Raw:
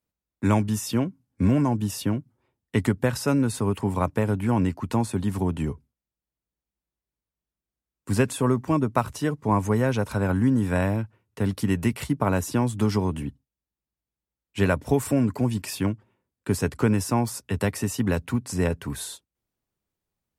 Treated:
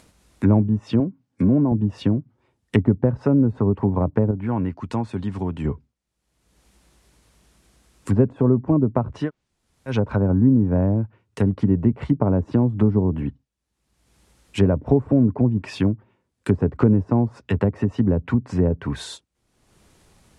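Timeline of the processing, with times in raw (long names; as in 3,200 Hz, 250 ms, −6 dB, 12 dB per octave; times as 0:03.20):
0:01.00–0:01.72: Bessel high-pass filter 150 Hz
0:04.31–0:05.65: clip gain −6.5 dB
0:09.26–0:09.91: fill with room tone, crossfade 0.10 s
whole clip: low-pass filter 11,000 Hz 24 dB per octave; treble cut that deepens with the level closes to 520 Hz, closed at −20.5 dBFS; upward compression, threshold −41 dBFS; level +5.5 dB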